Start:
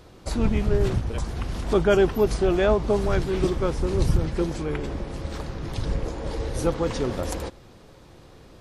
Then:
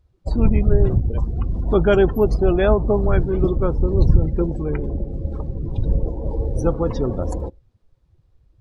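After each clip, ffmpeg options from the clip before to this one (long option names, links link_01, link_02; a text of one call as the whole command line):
ffmpeg -i in.wav -af "afftdn=noise_reduction=28:noise_floor=-32,lowshelf=frequency=150:gain=6,volume=2.5dB" out.wav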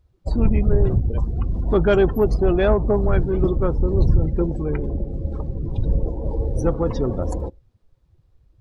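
ffmpeg -i in.wav -af "asoftclip=type=tanh:threshold=-6.5dB" out.wav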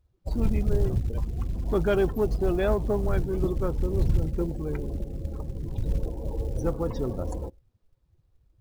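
ffmpeg -i in.wav -af "acrusher=bits=8:mode=log:mix=0:aa=0.000001,volume=-7dB" out.wav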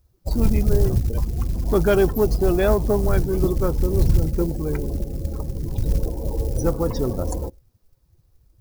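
ffmpeg -i in.wav -af "aexciter=amount=2.8:drive=3.5:freq=4600,volume=6dB" out.wav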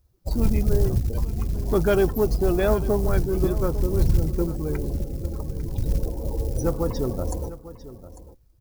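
ffmpeg -i in.wav -af "aecho=1:1:848:0.168,volume=-2.5dB" out.wav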